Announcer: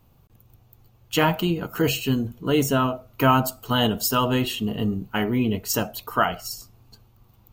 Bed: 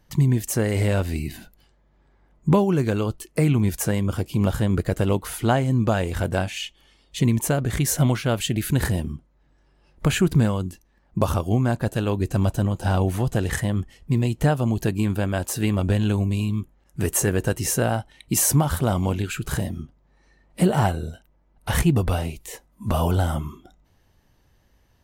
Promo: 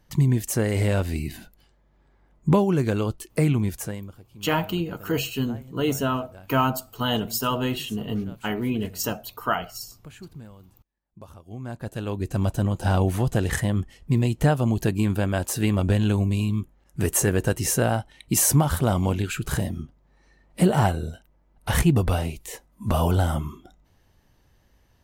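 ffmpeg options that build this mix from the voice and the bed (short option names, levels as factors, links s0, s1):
-filter_complex "[0:a]adelay=3300,volume=0.668[s0];[1:a]volume=13.3,afade=t=out:st=3.43:d=0.72:silence=0.0749894,afade=t=in:st=11.44:d=1.38:silence=0.0668344[s1];[s0][s1]amix=inputs=2:normalize=0"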